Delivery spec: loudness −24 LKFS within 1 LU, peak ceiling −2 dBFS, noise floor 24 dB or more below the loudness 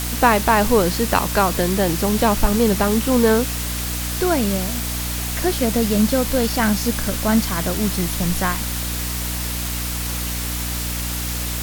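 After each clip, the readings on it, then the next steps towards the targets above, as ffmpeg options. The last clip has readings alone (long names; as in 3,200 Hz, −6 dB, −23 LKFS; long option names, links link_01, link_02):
mains hum 60 Hz; hum harmonics up to 300 Hz; level of the hum −25 dBFS; background noise floor −25 dBFS; target noise floor −44 dBFS; integrated loudness −19.5 LKFS; sample peak −1.0 dBFS; target loudness −24.0 LKFS
→ -af "bandreject=frequency=60:width_type=h:width=4,bandreject=frequency=120:width_type=h:width=4,bandreject=frequency=180:width_type=h:width=4,bandreject=frequency=240:width_type=h:width=4,bandreject=frequency=300:width_type=h:width=4"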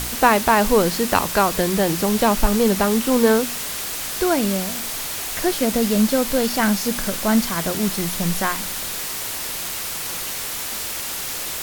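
mains hum none found; background noise floor −28 dBFS; target noise floor −44 dBFS
→ -af "afftdn=noise_reduction=16:noise_floor=-28"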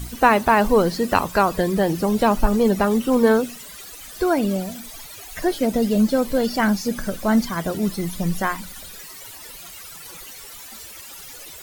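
background noise floor −40 dBFS; target noise floor −45 dBFS
→ -af "afftdn=noise_reduction=6:noise_floor=-40"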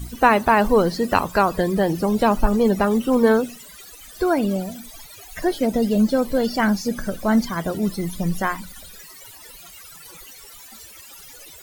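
background noise floor −43 dBFS; target noise floor −45 dBFS
→ -af "afftdn=noise_reduction=6:noise_floor=-43"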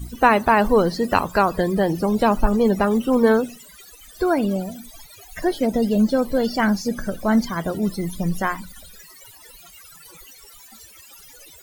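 background noise floor −46 dBFS; integrated loudness −20.5 LKFS; sample peak −2.0 dBFS; target loudness −24.0 LKFS
→ -af "volume=-3.5dB"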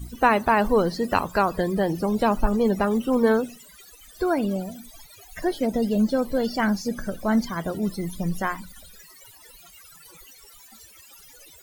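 integrated loudness −24.0 LKFS; sample peak −5.5 dBFS; background noise floor −50 dBFS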